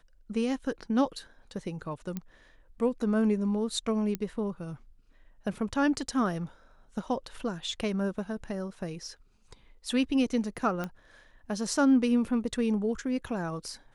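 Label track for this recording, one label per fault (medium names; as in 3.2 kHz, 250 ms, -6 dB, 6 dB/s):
2.170000	2.170000	pop -21 dBFS
4.150000	4.150000	pop -18 dBFS
10.840000	10.840000	pop -20 dBFS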